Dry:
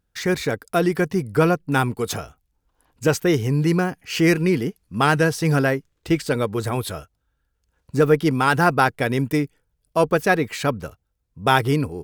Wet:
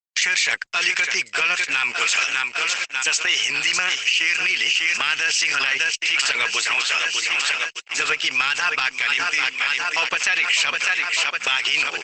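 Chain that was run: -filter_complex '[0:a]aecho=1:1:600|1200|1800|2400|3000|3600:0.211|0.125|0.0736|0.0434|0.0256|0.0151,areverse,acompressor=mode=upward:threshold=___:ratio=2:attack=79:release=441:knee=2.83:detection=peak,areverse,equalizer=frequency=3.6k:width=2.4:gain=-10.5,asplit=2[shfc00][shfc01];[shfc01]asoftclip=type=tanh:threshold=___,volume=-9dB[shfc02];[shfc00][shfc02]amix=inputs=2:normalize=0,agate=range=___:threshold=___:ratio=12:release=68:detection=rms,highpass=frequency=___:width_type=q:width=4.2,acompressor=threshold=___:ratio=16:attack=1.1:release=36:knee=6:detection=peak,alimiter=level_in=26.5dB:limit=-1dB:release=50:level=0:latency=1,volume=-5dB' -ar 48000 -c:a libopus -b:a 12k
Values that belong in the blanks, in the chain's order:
-20dB, -12.5dB, -58dB, -33dB, 2.8k, -35dB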